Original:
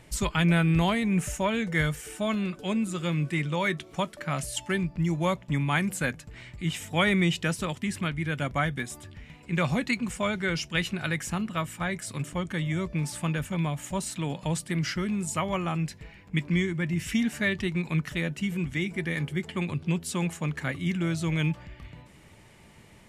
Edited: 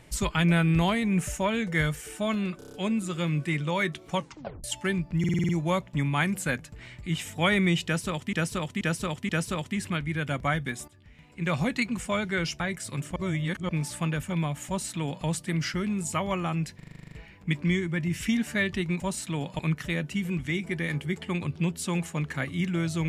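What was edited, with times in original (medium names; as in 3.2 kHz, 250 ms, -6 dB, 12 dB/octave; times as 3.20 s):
2.58 s: stutter 0.03 s, 6 plays
4.00 s: tape stop 0.49 s
5.04 s: stutter 0.05 s, 7 plays
7.40–7.88 s: loop, 4 plays
8.99–9.76 s: fade in, from -15.5 dB
10.71–11.82 s: delete
12.38–12.91 s: reverse
13.89–14.48 s: copy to 17.86 s
15.98 s: stutter 0.04 s, 10 plays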